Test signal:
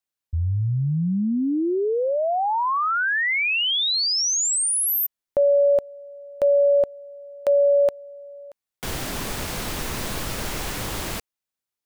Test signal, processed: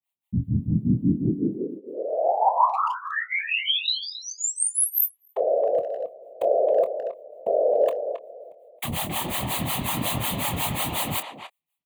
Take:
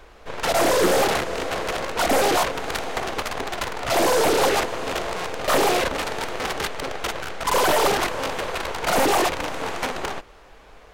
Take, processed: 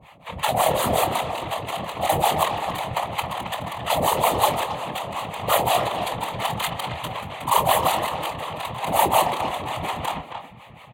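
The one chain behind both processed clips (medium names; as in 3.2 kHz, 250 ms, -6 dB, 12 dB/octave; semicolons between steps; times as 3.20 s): harmonic tremolo 5.5 Hz, depth 100%, crossover 570 Hz; static phaser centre 1.5 kHz, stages 6; dynamic bell 2.3 kHz, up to -8 dB, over -47 dBFS, Q 2.2; whisper effect; speakerphone echo 270 ms, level -8 dB; gain riding within 5 dB 2 s; high-pass 120 Hz 12 dB/octave; doubling 25 ms -12 dB; trim +6.5 dB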